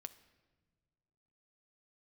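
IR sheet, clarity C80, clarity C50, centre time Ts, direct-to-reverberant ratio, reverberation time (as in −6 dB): 17.5 dB, 15.0 dB, 5 ms, 10.5 dB, non-exponential decay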